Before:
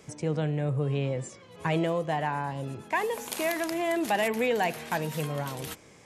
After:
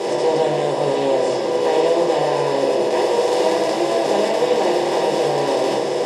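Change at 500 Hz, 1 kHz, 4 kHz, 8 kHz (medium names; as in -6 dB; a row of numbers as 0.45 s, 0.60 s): +14.5 dB, +11.0 dB, +12.5 dB, +8.0 dB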